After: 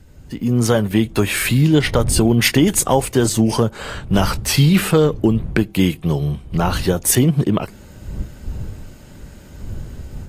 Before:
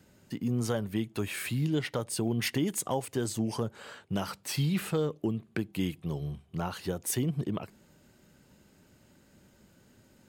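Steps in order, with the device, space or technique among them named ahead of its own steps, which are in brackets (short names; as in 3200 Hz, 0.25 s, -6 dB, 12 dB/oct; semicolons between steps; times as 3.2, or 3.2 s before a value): smartphone video outdoors (wind noise 88 Hz -45 dBFS; AGC gain up to 10 dB; gain +5.5 dB; AAC 48 kbps 32000 Hz)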